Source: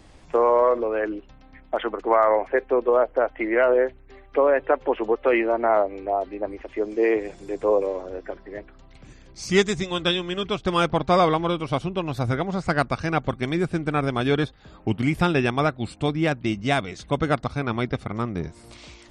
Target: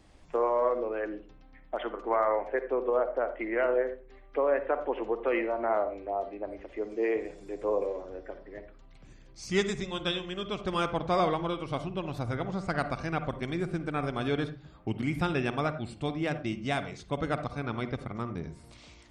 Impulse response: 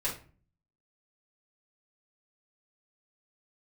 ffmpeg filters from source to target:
-filter_complex "[0:a]asplit=2[link_01][link_02];[link_02]aemphasis=mode=reproduction:type=75fm[link_03];[1:a]atrim=start_sample=2205,asetrate=52920,aresample=44100,adelay=49[link_04];[link_03][link_04]afir=irnorm=-1:irlink=0,volume=-13dB[link_05];[link_01][link_05]amix=inputs=2:normalize=0,volume=-8.5dB"

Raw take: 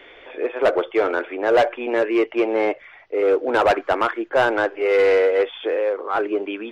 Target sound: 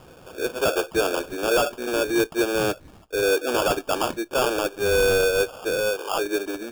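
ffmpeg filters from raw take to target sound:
ffmpeg -i in.wav -filter_complex "[0:a]acrossover=split=240|490|1000[link_01][link_02][link_03][link_04];[link_03]alimiter=limit=-20.5dB:level=0:latency=1[link_05];[link_01][link_02][link_05][link_04]amix=inputs=4:normalize=0,acrusher=samples=22:mix=1:aa=0.000001,volume=-2.5dB" out.wav

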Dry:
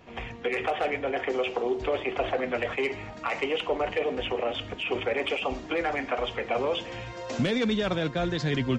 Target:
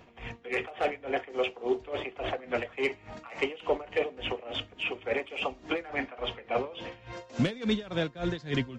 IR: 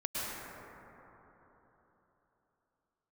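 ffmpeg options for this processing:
-filter_complex "[0:a]asettb=1/sr,asplit=3[link_01][link_02][link_03];[link_01]atrim=end=5.884[link_04];[link_02]atrim=start=5.88:end=7.13,asetpts=PTS-STARTPTS,afade=type=in:duration=0.004:curve=qsin,afade=type=out:start_time=1.246:duration=0.004:curve=qsin,lowpass=4700[link_05];[link_03]atrim=start=7.126[link_06];[link_04][link_05]acrossfade=duration=0.004:curve1=hsin:curve2=qsin[link_07];[link_07][link_06]acrossfade=duration=0.004:curve1=qsin:curve2=hsin,aeval=exprs='val(0)*pow(10,-19*(0.5-0.5*cos(2*PI*3.5*n/s))/20)':channel_layout=same,volume=1dB"

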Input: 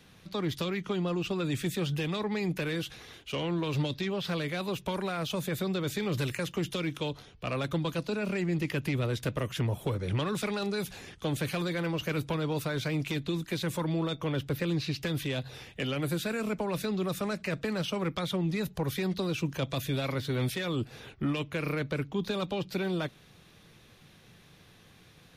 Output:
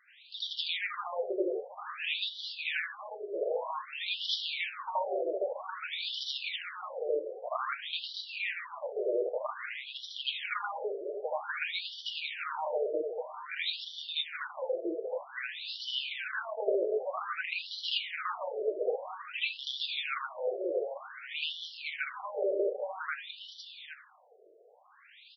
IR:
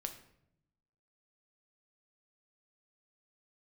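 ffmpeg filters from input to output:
-filter_complex "[0:a]aecho=1:1:797:0.355,asplit=2[link_01][link_02];[1:a]atrim=start_sample=2205,highshelf=frequency=4800:gain=5.5,adelay=79[link_03];[link_02][link_03]afir=irnorm=-1:irlink=0,volume=7dB[link_04];[link_01][link_04]amix=inputs=2:normalize=0,afftfilt=real='re*between(b*sr/1024,480*pow(4200/480,0.5+0.5*sin(2*PI*0.52*pts/sr))/1.41,480*pow(4200/480,0.5+0.5*sin(2*PI*0.52*pts/sr))*1.41)':imag='im*between(b*sr/1024,480*pow(4200/480,0.5+0.5*sin(2*PI*0.52*pts/sr))/1.41,480*pow(4200/480,0.5+0.5*sin(2*PI*0.52*pts/sr))*1.41)':win_size=1024:overlap=0.75"

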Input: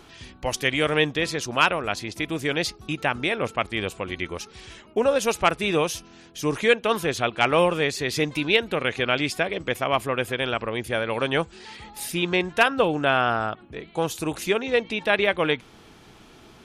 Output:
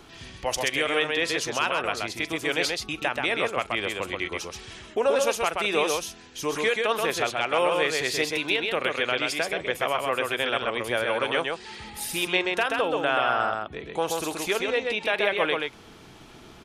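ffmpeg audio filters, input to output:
ffmpeg -i in.wav -filter_complex "[0:a]acrossover=split=370|2300[link_01][link_02][link_03];[link_01]acompressor=threshold=-40dB:ratio=12[link_04];[link_04][link_02][link_03]amix=inputs=3:normalize=0,alimiter=limit=-13dB:level=0:latency=1:release=172,aecho=1:1:42|130:0.112|0.668" out.wav

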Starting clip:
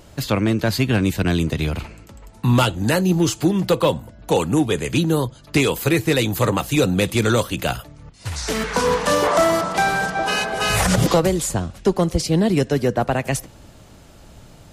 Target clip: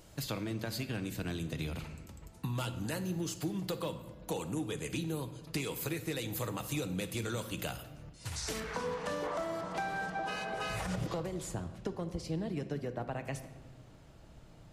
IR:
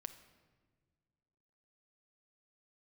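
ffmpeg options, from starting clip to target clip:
-filter_complex "[0:a]asetnsamples=nb_out_samples=441:pad=0,asendcmd='8.6 highshelf g -8.5',highshelf=frequency=4900:gain=6,acompressor=threshold=-23dB:ratio=5[link_01];[1:a]atrim=start_sample=2205[link_02];[link_01][link_02]afir=irnorm=-1:irlink=0,volume=-7dB"

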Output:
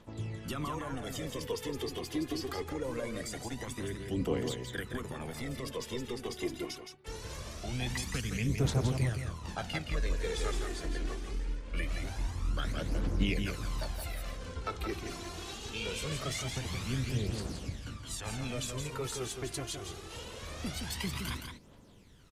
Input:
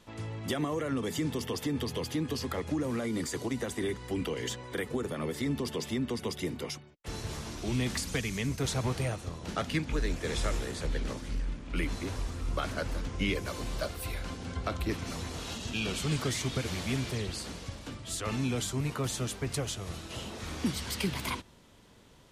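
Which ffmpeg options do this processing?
ffmpeg -i in.wav -filter_complex "[0:a]tremolo=f=250:d=0.462,aphaser=in_gain=1:out_gain=1:delay=3:decay=0.64:speed=0.23:type=triangular,asplit=2[link_01][link_02];[link_02]aecho=0:1:168:0.501[link_03];[link_01][link_03]amix=inputs=2:normalize=0,volume=-4dB" out.wav

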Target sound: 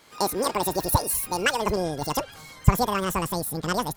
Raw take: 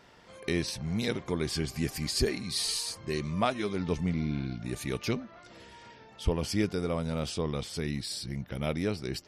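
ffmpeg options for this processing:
ffmpeg -i in.wav -af "dynaudnorm=framelen=110:gausssize=5:maxgain=5dB,asetrate=103194,aresample=44100,asubboost=boost=10:cutoff=110,volume=1.5dB" out.wav

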